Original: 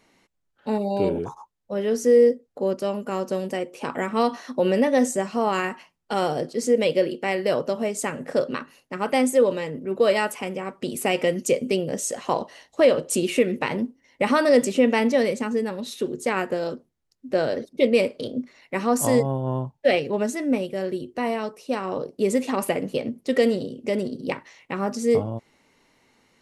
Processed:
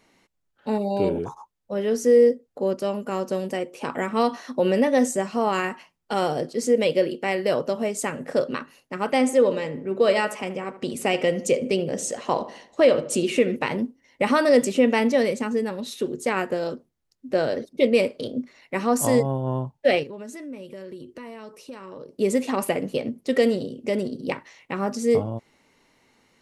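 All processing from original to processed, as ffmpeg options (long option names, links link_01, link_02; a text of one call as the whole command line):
ffmpeg -i in.wav -filter_complex "[0:a]asettb=1/sr,asplit=3[link_01][link_02][link_03];[link_01]atrim=end=9.074[link_04];[link_02]atrim=start=9.07:end=13.56,asetpts=PTS-STARTPTS,afade=type=in:duration=0.004:curve=qsin,afade=type=out:start_time=4.486:duration=0.004:curve=qsin,lowpass=9000,asplit=2[link_05][link_06];[link_06]adelay=77,lowpass=frequency=1900:poles=1,volume=-13.5dB,asplit=2[link_07][link_08];[link_08]adelay=77,lowpass=frequency=1900:poles=1,volume=0.49,asplit=2[link_09][link_10];[link_10]adelay=77,lowpass=frequency=1900:poles=1,volume=0.49,asplit=2[link_11][link_12];[link_12]adelay=77,lowpass=frequency=1900:poles=1,volume=0.49,asplit=2[link_13][link_14];[link_14]adelay=77,lowpass=frequency=1900:poles=1,volume=0.49[link_15];[link_05][link_07][link_09][link_11][link_13][link_15]amix=inputs=6:normalize=0,atrim=end_sample=198009[link_16];[link_03]atrim=start=13.556[link_17];[link_04][link_16]acrossfade=duration=0.004:curve1=hsin:curve2=qsin[link_18];[link_18][link_17]acrossfade=duration=0.004:curve1=qsin:curve2=hsin,asettb=1/sr,asplit=3[link_19][link_20][link_21];[link_19]atrim=end=20.034[link_22];[link_20]atrim=start=20.03:end=22.18,asetpts=PTS-STARTPTS,afade=type=in:duration=0.004:curve=qsin,afade=type=out:start_time=2.146:duration=0.004:curve=qsin,acompressor=threshold=-36dB:ratio=4:attack=3.2:release=140:knee=1:detection=peak,bandreject=frequency=740:width=5.4[link_23];[link_21]atrim=start=22.176[link_24];[link_22][link_23]acrossfade=duration=0.004:curve1=hsin:curve2=qsin[link_25];[link_25][link_24]acrossfade=duration=0.004:curve1=qsin:curve2=hsin" out.wav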